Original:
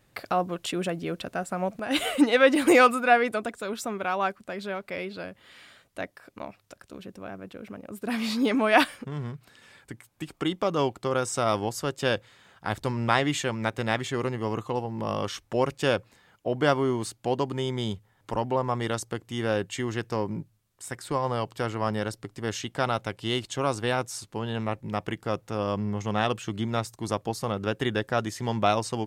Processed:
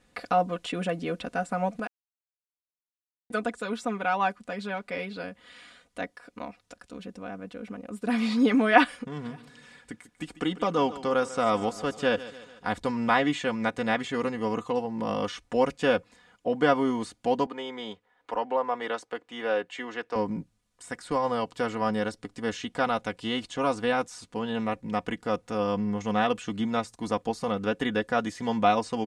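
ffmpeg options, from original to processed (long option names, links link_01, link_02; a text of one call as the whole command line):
ffmpeg -i in.wav -filter_complex "[0:a]asplit=3[link_01][link_02][link_03];[link_01]afade=type=out:start_time=9.24:duration=0.02[link_04];[link_02]aecho=1:1:145|290|435|580:0.15|0.0748|0.0374|0.0187,afade=type=in:start_time=9.24:duration=0.02,afade=type=out:start_time=12.77:duration=0.02[link_05];[link_03]afade=type=in:start_time=12.77:duration=0.02[link_06];[link_04][link_05][link_06]amix=inputs=3:normalize=0,asettb=1/sr,asplit=3[link_07][link_08][link_09];[link_07]atrim=end=17.464[link_10];[link_08]atrim=start=17.46:end=20.16,asetpts=PTS-STARTPTS,afade=type=in:duration=0.004:curve=qsin,afade=type=out:start_time=2.696:duration=0.004:curve=qsin,acrossover=split=330 3600:gain=0.1 1 0.2[link_11][link_12][link_13];[link_11][link_12][link_13]amix=inputs=3:normalize=0[link_14];[link_09]atrim=start=20.156[link_15];[link_10][link_14]acrossfade=duration=0.004:curve1=hsin:curve2=qsin[link_16];[link_16][link_15]acrossfade=duration=0.004:curve1=qsin:curve2=hsin,asplit=3[link_17][link_18][link_19];[link_17]atrim=end=1.87,asetpts=PTS-STARTPTS,afade=type=out:start_time=1.866:duration=0.004:curve=hsin[link_20];[link_18]atrim=start=1.87:end=3.3,asetpts=PTS-STARTPTS,volume=0[link_21];[link_19]atrim=start=3.3,asetpts=PTS-STARTPTS,afade=type=in:duration=0.004:curve=hsin[link_22];[link_20][link_21][link_22]concat=n=3:v=0:a=1,acrossover=split=3300[link_23][link_24];[link_24]acompressor=threshold=-43dB:ratio=4:attack=1:release=60[link_25];[link_23][link_25]amix=inputs=2:normalize=0,lowpass=frequency=10000:width=0.5412,lowpass=frequency=10000:width=1.3066,aecho=1:1:4.1:0.71,volume=-1dB" out.wav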